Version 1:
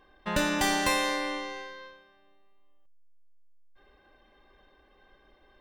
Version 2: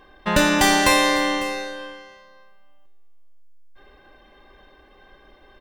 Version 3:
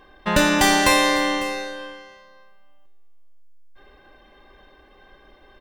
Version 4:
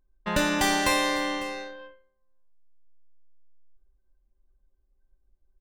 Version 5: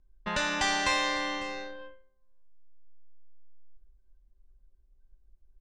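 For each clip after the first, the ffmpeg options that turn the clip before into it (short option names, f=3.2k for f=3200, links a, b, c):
-filter_complex "[0:a]asplit=2[a][b];[b]volume=19dB,asoftclip=hard,volume=-19dB,volume=-11dB[c];[a][c]amix=inputs=2:normalize=0,aecho=1:1:550:0.15,volume=7.5dB"
-af anull
-af "anlmdn=15.8,volume=-7dB"
-filter_complex "[0:a]lowpass=f=7.1k:w=0.5412,lowpass=f=7.1k:w=1.3066,lowshelf=f=160:g=8.5,acrossover=split=670|1900[a][b][c];[a]acompressor=threshold=-35dB:ratio=6[d];[d][b][c]amix=inputs=3:normalize=0,volume=-2dB"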